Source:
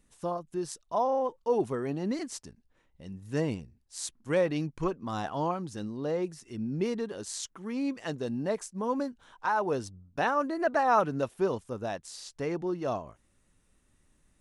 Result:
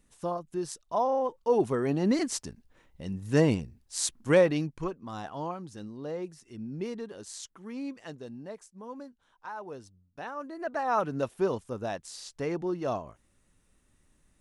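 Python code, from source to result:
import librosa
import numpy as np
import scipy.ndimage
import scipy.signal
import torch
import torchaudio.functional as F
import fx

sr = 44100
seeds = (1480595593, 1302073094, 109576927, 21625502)

y = fx.gain(x, sr, db=fx.line((1.25, 0.5), (2.23, 7.0), (4.29, 7.0), (4.96, -5.0), (7.79, -5.0), (8.58, -12.0), (10.24, -12.0), (11.26, 0.5)))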